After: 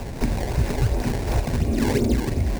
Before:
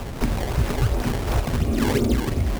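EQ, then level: graphic EQ with 31 bands 1.25 kHz -10 dB, 3.15 kHz -6 dB, 12.5 kHz -5 dB; 0.0 dB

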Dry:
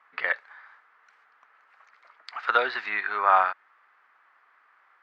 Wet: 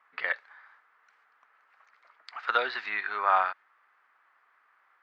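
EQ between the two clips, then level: dynamic bell 4.2 kHz, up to +4 dB, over -41 dBFS, Q 0.85; -4.5 dB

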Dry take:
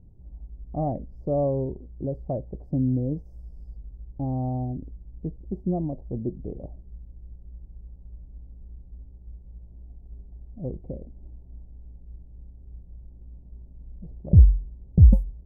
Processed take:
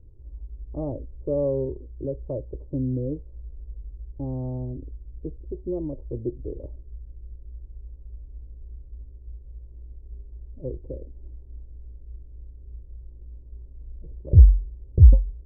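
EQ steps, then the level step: low-pass 1 kHz 24 dB/octave; static phaser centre 730 Hz, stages 6; +3.5 dB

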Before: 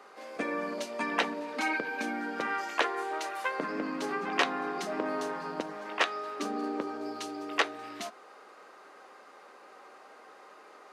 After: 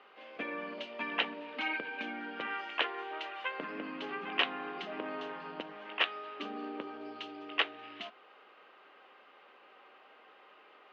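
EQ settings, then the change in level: four-pole ladder low-pass 3.3 kHz, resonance 65%; +3.5 dB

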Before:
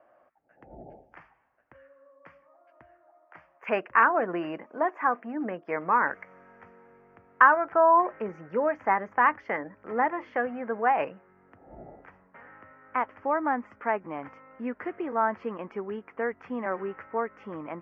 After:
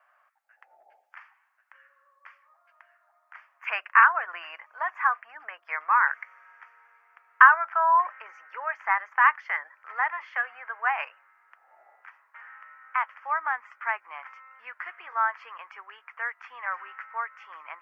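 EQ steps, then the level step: high-pass 1.1 kHz 24 dB/octave; +5.5 dB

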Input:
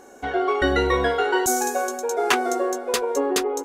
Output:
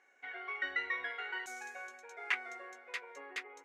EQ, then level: band-pass filter 2.1 kHz, Q 5.2; -3.5 dB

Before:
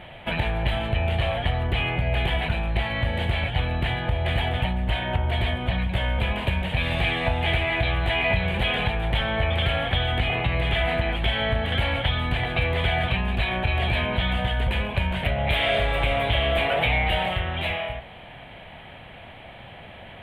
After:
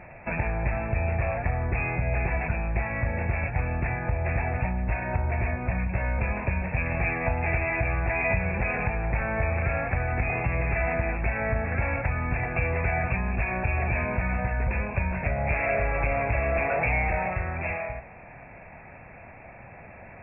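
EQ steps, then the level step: brick-wall FIR low-pass 2.7 kHz; -2.5 dB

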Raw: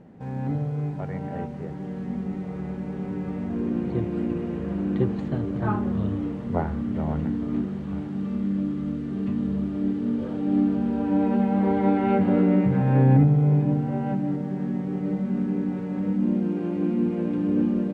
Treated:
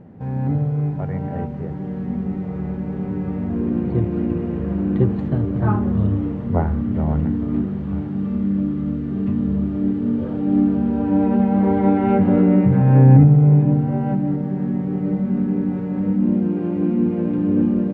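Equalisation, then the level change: low-pass 2 kHz 6 dB/octave; peaking EQ 89 Hz +7 dB 1.3 oct; +4.0 dB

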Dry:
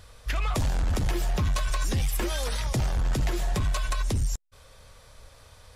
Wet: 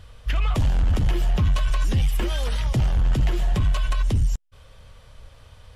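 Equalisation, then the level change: tone controls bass +6 dB, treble -6 dB; peaking EQ 3 kHz +7.5 dB 0.26 oct; 0.0 dB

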